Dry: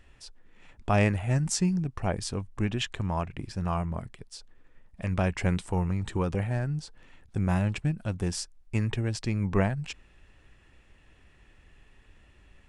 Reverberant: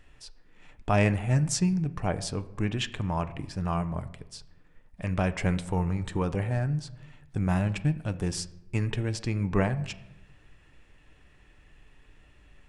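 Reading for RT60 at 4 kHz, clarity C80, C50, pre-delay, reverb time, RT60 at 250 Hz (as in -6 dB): 0.55 s, 18.0 dB, 16.0 dB, 7 ms, 0.90 s, 1.1 s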